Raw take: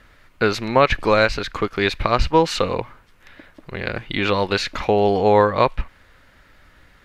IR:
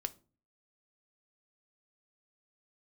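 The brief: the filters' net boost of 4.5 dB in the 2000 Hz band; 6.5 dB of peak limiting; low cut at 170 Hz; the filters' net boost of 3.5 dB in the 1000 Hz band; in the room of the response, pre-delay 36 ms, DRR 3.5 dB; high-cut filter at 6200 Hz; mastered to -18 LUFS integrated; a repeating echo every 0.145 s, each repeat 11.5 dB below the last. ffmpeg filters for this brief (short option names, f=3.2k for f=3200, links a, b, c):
-filter_complex "[0:a]highpass=170,lowpass=6.2k,equalizer=f=1k:t=o:g=3,equalizer=f=2k:t=o:g=5,alimiter=limit=-3.5dB:level=0:latency=1,aecho=1:1:145|290|435:0.266|0.0718|0.0194,asplit=2[a][b];[1:a]atrim=start_sample=2205,adelay=36[c];[b][c]afir=irnorm=-1:irlink=0,volume=-2.5dB[d];[a][d]amix=inputs=2:normalize=0,volume=-0.5dB"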